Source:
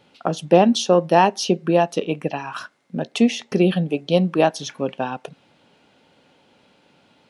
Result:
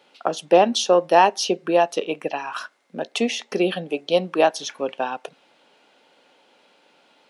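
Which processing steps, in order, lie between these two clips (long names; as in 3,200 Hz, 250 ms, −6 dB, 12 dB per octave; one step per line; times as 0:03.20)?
high-pass filter 390 Hz 12 dB per octave
level +1 dB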